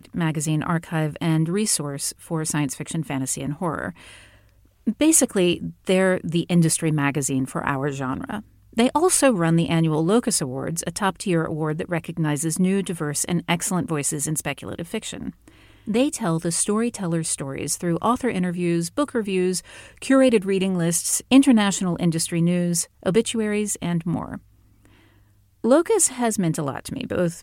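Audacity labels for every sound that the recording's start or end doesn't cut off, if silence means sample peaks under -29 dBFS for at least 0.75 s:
4.870000	24.370000	sound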